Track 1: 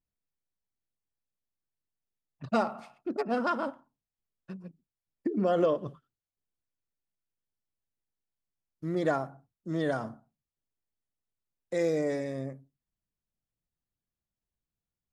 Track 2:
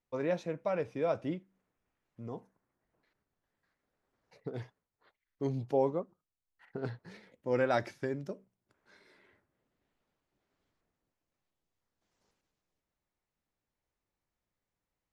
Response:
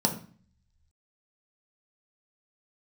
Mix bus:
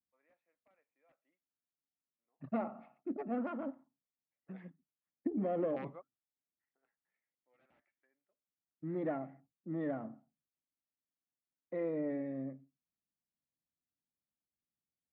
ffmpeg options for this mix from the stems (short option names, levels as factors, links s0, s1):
-filter_complex "[0:a]adynamicequalizer=threshold=0.01:dfrequency=1100:dqfactor=1.1:tfrequency=1100:tqfactor=1.1:attack=5:release=100:ratio=0.375:range=2:mode=cutabove:tftype=bell,aeval=exprs='(tanh(10*val(0)+0.3)-tanh(0.3))/10':c=same,volume=0.562,asplit=2[s0][s1];[1:a]highpass=1300,aeval=exprs='(mod(47.3*val(0)+1,2)-1)/47.3':c=same,volume=1.12[s2];[s1]apad=whole_len=666955[s3];[s2][s3]sidechaingate=range=0.0447:threshold=0.00158:ratio=16:detection=peak[s4];[s0][s4]amix=inputs=2:normalize=0,highpass=100,equalizer=f=110:t=q:w=4:g=-8,equalizer=f=270:t=q:w=4:g=6,equalizer=f=430:t=q:w=4:g=-5,equalizer=f=980:t=q:w=4:g=-8,equalizer=f=1500:t=q:w=4:g=-9,lowpass=f=2000:w=0.5412,lowpass=f=2000:w=1.3066"